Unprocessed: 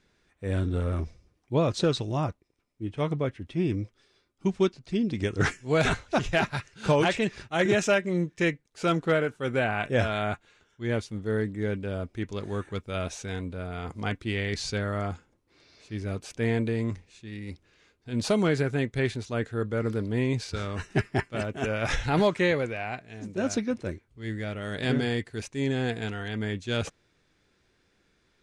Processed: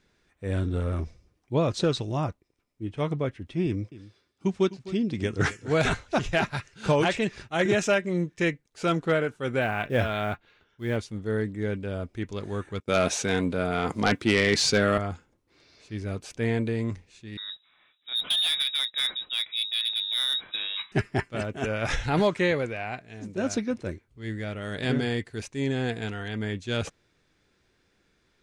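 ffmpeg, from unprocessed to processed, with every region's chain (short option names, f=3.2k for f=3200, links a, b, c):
-filter_complex "[0:a]asettb=1/sr,asplit=3[a][b][c];[a]atrim=end=3.664[d];[b]atrim=start=3.66:end=5.82,asetpts=PTS-STARTPTS,afade=t=in:d=0.004:c=qsin,afade=t=out:st=2.156:d=0.004:c=qsin,highpass=52,aecho=1:1:256:0.15,atrim=end_sample=95256[e];[c]atrim=start=5.816[f];[d][e]acrossfade=d=0.004:c1=hsin:c2=qsin[g];[g][f]acrossfade=d=0.004:c1=qsin:c2=hsin,asettb=1/sr,asplit=3[h][i][j];[h]atrim=end=9.614[k];[i]atrim=start=9.61:end=10.96,asetpts=PTS-STARTPTS,afade=t=in:d=0.004:c=qsin,afade=t=out:st=1.346:d=0.004:c=qsin,lowpass=f=4.7k:w=0.5412,lowpass=f=4.7k:w=1.3066,acrusher=bits=8:mode=log:mix=0:aa=0.000001[l];[j]atrim=start=10.956[m];[k][l]acrossfade=d=0.004:c1=hsin:c2=qsin[n];[n][m]acrossfade=d=0.004:c1=qsin:c2=hsin,asettb=1/sr,asplit=3[o][p][q];[o]atrim=end=12.804[r];[p]atrim=start=12.8:end=14.98,asetpts=PTS-STARTPTS,afade=t=in:d=0.004:c=qsin,afade=t=out:st=2.176:d=0.004:c=qsin,highpass=160,agate=range=-33dB:threshold=-53dB:ratio=3:release=100:detection=peak,aeval=exprs='0.224*sin(PI/2*2.24*val(0)/0.224)':c=same[s];[q]atrim=start=14.976[t];[r][s]acrossfade=d=0.004:c1=hsin:c2=qsin[u];[u][t]acrossfade=d=0.004:c1=qsin:c2=hsin,asettb=1/sr,asplit=3[v][w][x];[v]atrim=end=17.374[y];[w]atrim=start=17.37:end=20.92,asetpts=PTS-STARTPTS,afade=t=in:d=0.004:c=qsin,afade=t=out:st=3.546:d=0.004:c=qsin,lowpass=f=3.3k:t=q:w=0.5098,lowpass=f=3.3k:t=q:w=0.6013,lowpass=f=3.3k:t=q:w=0.9,lowpass=f=3.3k:t=q:w=2.563,afreqshift=-3900,asoftclip=type=hard:threshold=-20.5dB[z];[x]atrim=start=20.916[aa];[y][z]acrossfade=d=0.004:c1=hsin:c2=qsin[ab];[ab][aa]acrossfade=d=0.004:c1=qsin:c2=hsin"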